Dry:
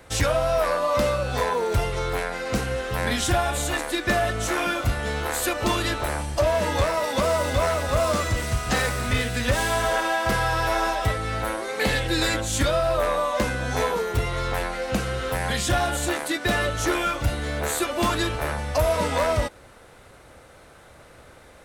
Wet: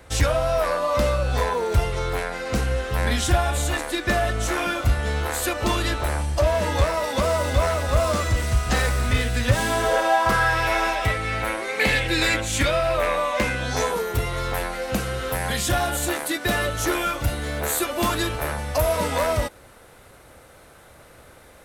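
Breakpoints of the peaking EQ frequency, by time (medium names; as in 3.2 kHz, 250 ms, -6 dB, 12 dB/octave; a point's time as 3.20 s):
peaking EQ +9 dB 0.64 oct
9.38 s 63 Hz
9.69 s 270 Hz
10.60 s 2.3 kHz
13.54 s 2.3 kHz
14.02 s 13 kHz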